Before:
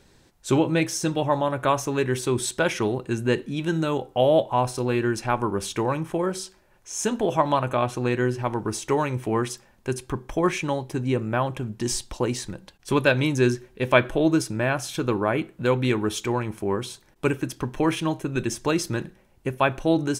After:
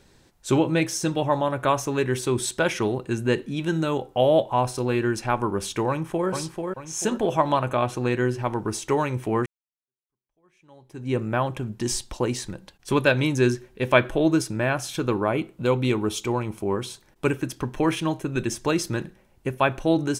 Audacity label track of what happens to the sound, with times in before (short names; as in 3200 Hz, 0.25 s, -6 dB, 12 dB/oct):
5.880000	6.290000	echo throw 0.44 s, feedback 40%, level -5 dB
9.460000	11.150000	fade in exponential
15.270000	16.760000	bell 1700 Hz -9.5 dB 0.33 oct